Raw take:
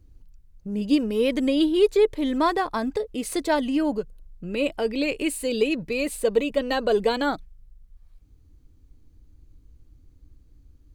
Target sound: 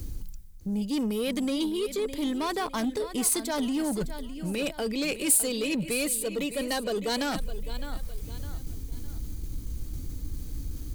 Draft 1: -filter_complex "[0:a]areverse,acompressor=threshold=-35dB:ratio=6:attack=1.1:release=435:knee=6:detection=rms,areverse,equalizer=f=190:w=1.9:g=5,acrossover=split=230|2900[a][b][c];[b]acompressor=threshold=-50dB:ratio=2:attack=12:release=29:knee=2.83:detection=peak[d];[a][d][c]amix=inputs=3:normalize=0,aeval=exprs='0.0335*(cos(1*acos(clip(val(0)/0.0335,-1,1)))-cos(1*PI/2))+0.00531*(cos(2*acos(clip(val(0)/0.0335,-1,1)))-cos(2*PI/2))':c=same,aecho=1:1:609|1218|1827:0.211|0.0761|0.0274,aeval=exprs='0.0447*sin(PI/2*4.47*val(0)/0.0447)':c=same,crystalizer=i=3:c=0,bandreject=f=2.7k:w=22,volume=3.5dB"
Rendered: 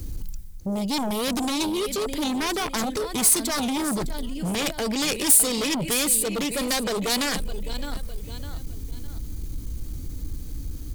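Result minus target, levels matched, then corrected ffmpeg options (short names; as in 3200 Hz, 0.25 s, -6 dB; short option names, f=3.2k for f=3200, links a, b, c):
compressor: peak gain reduction -9 dB
-filter_complex "[0:a]areverse,acompressor=threshold=-46dB:ratio=6:attack=1.1:release=435:knee=6:detection=rms,areverse,equalizer=f=190:w=1.9:g=5,acrossover=split=230|2900[a][b][c];[b]acompressor=threshold=-50dB:ratio=2:attack=12:release=29:knee=2.83:detection=peak[d];[a][d][c]amix=inputs=3:normalize=0,aeval=exprs='0.0335*(cos(1*acos(clip(val(0)/0.0335,-1,1)))-cos(1*PI/2))+0.00531*(cos(2*acos(clip(val(0)/0.0335,-1,1)))-cos(2*PI/2))':c=same,aecho=1:1:609|1218|1827:0.211|0.0761|0.0274,aeval=exprs='0.0447*sin(PI/2*4.47*val(0)/0.0447)':c=same,crystalizer=i=3:c=0,bandreject=f=2.7k:w=22,volume=3.5dB"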